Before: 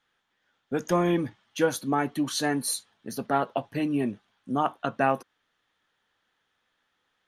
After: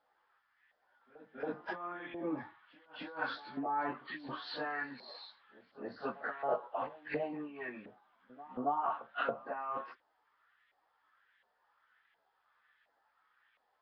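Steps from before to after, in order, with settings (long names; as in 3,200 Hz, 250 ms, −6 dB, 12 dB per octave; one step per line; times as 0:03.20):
compressor whose output falls as the input rises −28 dBFS, ratio −0.5
time stretch by phase vocoder 1.9×
auto-filter band-pass saw up 1.4 Hz 620–2,100 Hz
backwards echo 276 ms −18.5 dB
level +6.5 dB
Nellymoser 22 kbit/s 11,025 Hz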